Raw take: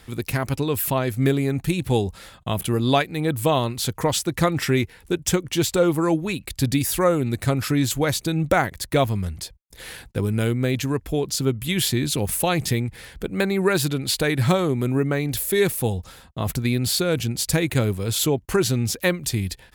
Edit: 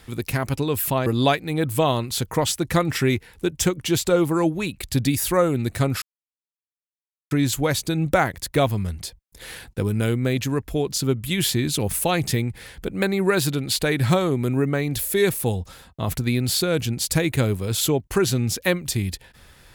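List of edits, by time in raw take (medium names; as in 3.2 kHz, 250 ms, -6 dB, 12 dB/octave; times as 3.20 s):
1.06–2.73 s: delete
7.69 s: insert silence 1.29 s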